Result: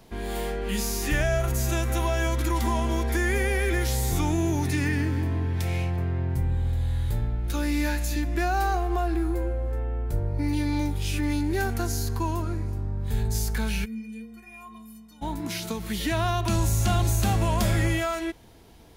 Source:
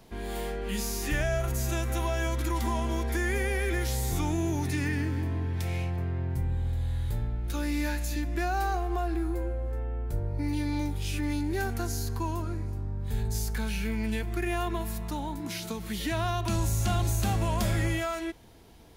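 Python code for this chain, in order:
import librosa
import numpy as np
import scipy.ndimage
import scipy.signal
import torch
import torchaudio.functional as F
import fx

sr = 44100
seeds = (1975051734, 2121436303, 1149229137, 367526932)

p1 = np.sign(x) * np.maximum(np.abs(x) - 10.0 ** (-45.0 / 20.0), 0.0)
p2 = x + (p1 * librosa.db_to_amplitude(-11.0))
p3 = fx.stiff_resonator(p2, sr, f0_hz=220.0, decay_s=0.59, stiffness=0.03, at=(13.84, 15.21), fade=0.02)
y = p3 * librosa.db_to_amplitude(2.0)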